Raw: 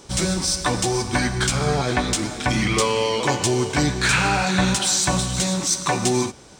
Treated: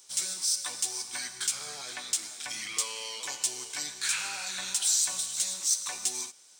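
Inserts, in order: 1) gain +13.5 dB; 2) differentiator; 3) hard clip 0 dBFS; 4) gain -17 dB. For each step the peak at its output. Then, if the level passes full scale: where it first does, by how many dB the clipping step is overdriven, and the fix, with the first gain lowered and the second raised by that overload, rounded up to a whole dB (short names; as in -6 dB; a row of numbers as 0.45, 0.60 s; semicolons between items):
+6.5, +4.0, 0.0, -17.0 dBFS; step 1, 4.0 dB; step 1 +9.5 dB, step 4 -13 dB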